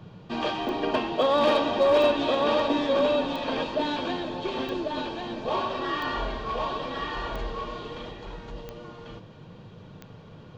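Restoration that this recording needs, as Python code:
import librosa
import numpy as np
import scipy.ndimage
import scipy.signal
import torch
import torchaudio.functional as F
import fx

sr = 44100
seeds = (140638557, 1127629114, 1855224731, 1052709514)

y = fx.fix_declip(x, sr, threshold_db=-14.0)
y = fx.fix_declick_ar(y, sr, threshold=10.0)
y = fx.noise_reduce(y, sr, print_start_s=10.05, print_end_s=10.55, reduce_db=25.0)
y = fx.fix_echo_inverse(y, sr, delay_ms=1093, level_db=-3.5)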